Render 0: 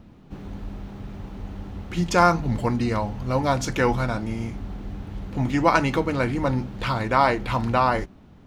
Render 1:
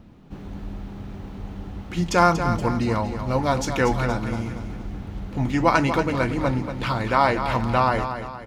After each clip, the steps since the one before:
repeating echo 236 ms, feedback 43%, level −9 dB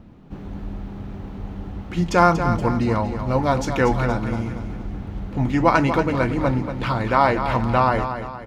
high-shelf EQ 3,000 Hz −7 dB
level +2.5 dB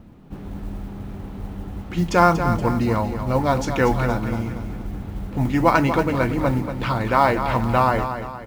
noise that follows the level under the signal 31 dB

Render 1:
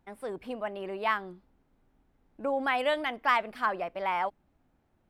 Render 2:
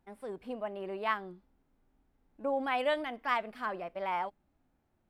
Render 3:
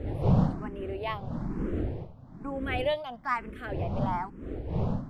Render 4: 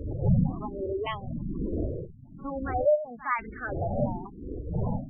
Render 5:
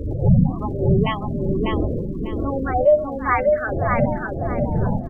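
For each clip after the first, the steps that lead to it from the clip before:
harmonic and percussive parts rebalanced percussive −7 dB; level −2 dB
wind on the microphone 240 Hz −31 dBFS; frequency shifter mixed with the dry sound +1.1 Hz; level +2.5 dB
auto-filter low-pass saw down 0.94 Hz 360–4,300 Hz; echo ahead of the sound 61 ms −15.5 dB; gate on every frequency bin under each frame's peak −15 dB strong
surface crackle 120 per second −58 dBFS; on a send: repeating echo 597 ms, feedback 26%, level −3.5 dB; on the sum: level +8 dB

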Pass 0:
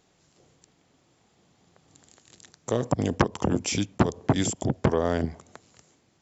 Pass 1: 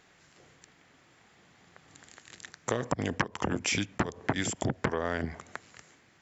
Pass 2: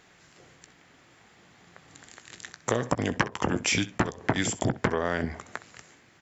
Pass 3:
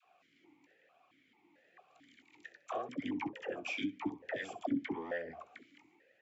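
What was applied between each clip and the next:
parametric band 1,800 Hz +12 dB 1.4 octaves; downward compressor 10 to 1, threshold −25 dBFS, peak gain reduction 15 dB
ambience of single reflections 17 ms −14 dB, 64 ms −17 dB; level +3.5 dB
flanger 0.96 Hz, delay 0.8 ms, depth 2.8 ms, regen +53%; all-pass dispersion lows, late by 69 ms, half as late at 600 Hz; formant filter that steps through the vowels 4.5 Hz; level +4.5 dB

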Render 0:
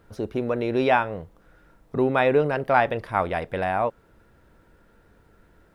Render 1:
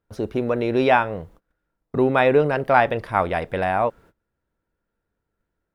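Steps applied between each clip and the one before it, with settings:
noise gate −49 dBFS, range −25 dB
level +3 dB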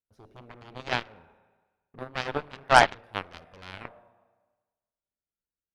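four-comb reverb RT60 1.3 s, combs from 25 ms, DRR 7.5 dB
gain on a spectral selection 0:02.64–0:02.94, 630–2,300 Hz +6 dB
harmonic generator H 4 −16 dB, 6 −19 dB, 7 −16 dB, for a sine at 4 dBFS
level −5 dB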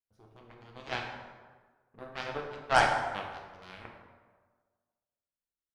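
dense smooth reverb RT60 1.4 s, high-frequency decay 0.6×, DRR 0.5 dB
level −8 dB

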